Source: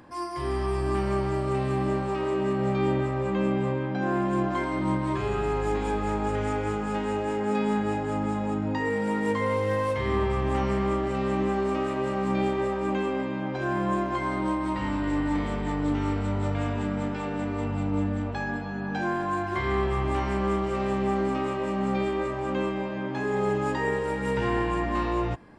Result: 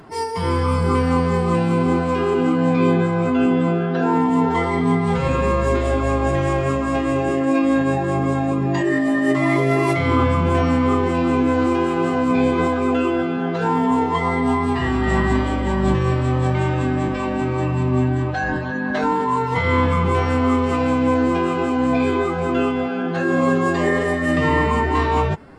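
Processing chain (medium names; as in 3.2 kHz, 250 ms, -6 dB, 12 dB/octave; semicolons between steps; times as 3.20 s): formant-preserving pitch shift +4.5 st; trim +8.5 dB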